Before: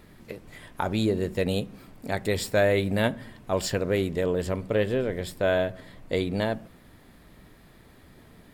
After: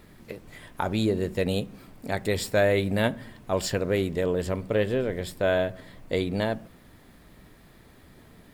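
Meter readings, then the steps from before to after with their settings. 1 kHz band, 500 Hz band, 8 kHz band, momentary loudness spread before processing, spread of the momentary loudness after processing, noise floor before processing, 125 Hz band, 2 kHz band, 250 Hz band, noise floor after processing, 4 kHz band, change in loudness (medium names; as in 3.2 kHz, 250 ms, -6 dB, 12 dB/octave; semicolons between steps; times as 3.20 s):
0.0 dB, 0.0 dB, 0.0 dB, 18 LU, 18 LU, -54 dBFS, 0.0 dB, 0.0 dB, 0.0 dB, -54 dBFS, 0.0 dB, 0.0 dB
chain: word length cut 12-bit, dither triangular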